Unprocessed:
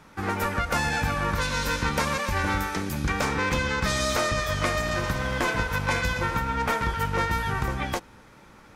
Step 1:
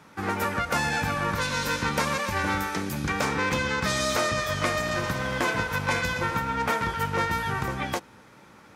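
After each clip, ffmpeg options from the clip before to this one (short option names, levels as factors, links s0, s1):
-af "highpass=99"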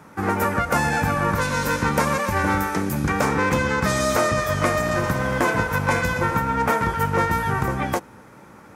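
-af "equalizer=f=3700:t=o:w=1.6:g=-10,volume=2.24"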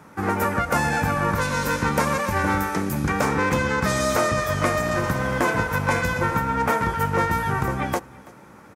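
-af "aecho=1:1:331:0.075,volume=0.891"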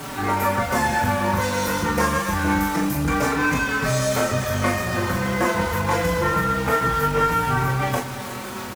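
-filter_complex "[0:a]aeval=exprs='val(0)+0.5*0.0501*sgn(val(0))':c=same,aecho=1:1:24|40:0.562|0.596,asplit=2[s0][s1];[s1]adelay=4.7,afreqshift=-0.26[s2];[s0][s2]amix=inputs=2:normalize=1"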